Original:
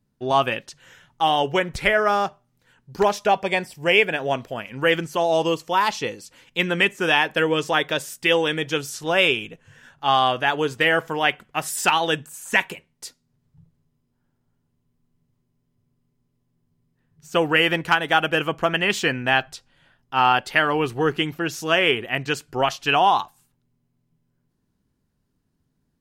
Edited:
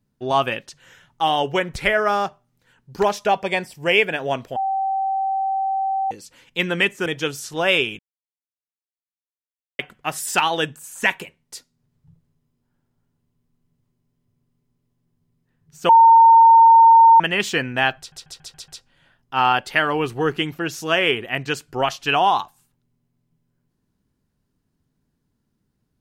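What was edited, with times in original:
4.56–6.11 s: bleep 774 Hz -19 dBFS
7.06–8.56 s: delete
9.49–11.29 s: mute
17.39–18.70 s: bleep 912 Hz -6.5 dBFS
19.48 s: stutter 0.14 s, 6 plays

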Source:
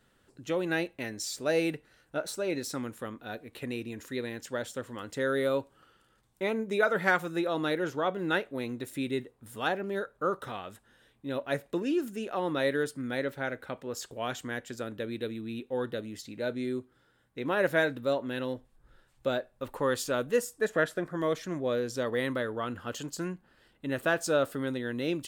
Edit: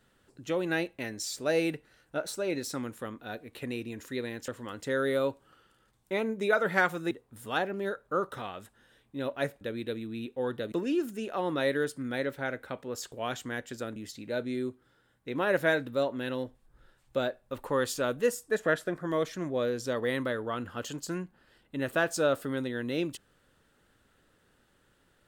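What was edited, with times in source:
4.48–4.78 s: delete
7.41–9.21 s: delete
14.95–16.06 s: move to 11.71 s

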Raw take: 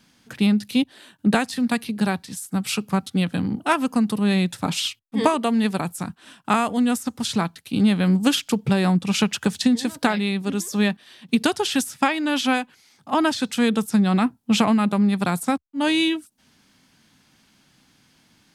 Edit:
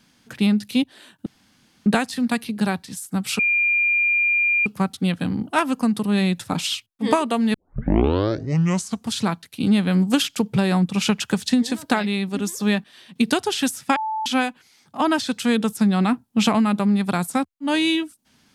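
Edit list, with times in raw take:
1.26 s: insert room tone 0.60 s
2.79 s: add tone 2.4 kHz -16 dBFS 1.27 s
5.67 s: tape start 1.59 s
12.09–12.39 s: bleep 874 Hz -22.5 dBFS

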